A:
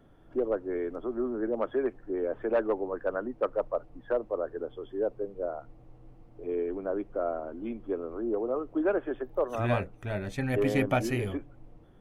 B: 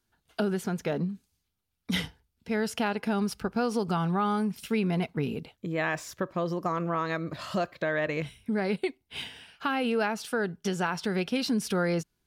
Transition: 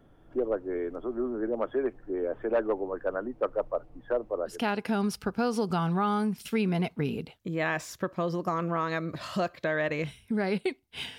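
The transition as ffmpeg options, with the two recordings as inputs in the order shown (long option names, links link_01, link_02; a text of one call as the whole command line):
ffmpeg -i cue0.wav -i cue1.wav -filter_complex "[0:a]apad=whole_dur=11.18,atrim=end=11.18,atrim=end=4.65,asetpts=PTS-STARTPTS[link_01];[1:a]atrim=start=2.63:end=9.36,asetpts=PTS-STARTPTS[link_02];[link_01][link_02]acrossfade=duration=0.2:curve1=tri:curve2=tri" out.wav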